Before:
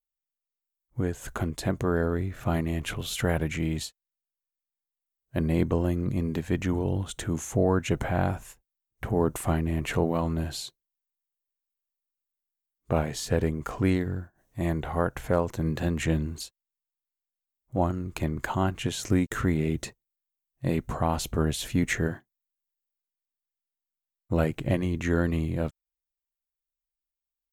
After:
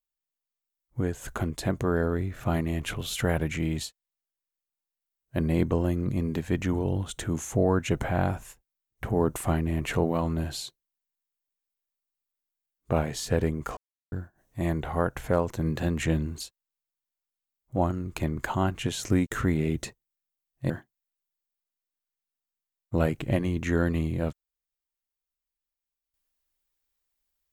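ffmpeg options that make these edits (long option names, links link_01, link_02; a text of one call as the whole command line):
ffmpeg -i in.wav -filter_complex "[0:a]asplit=4[link_01][link_02][link_03][link_04];[link_01]atrim=end=13.77,asetpts=PTS-STARTPTS,afade=type=out:start_time=13.766:duration=0.004:curve=hsin[link_05];[link_02]atrim=start=13.77:end=14.12,asetpts=PTS-STARTPTS,volume=0[link_06];[link_03]atrim=start=14.12:end=20.702,asetpts=PTS-STARTPTS,afade=type=in:duration=0.004:curve=hsin[link_07];[link_04]atrim=start=22.078[link_08];[link_05][link_06][link_07]concat=n=3:v=0:a=1[link_09];[link_09][link_08]acrossfade=duration=0.004:curve1=hsin:curve2=hsin" out.wav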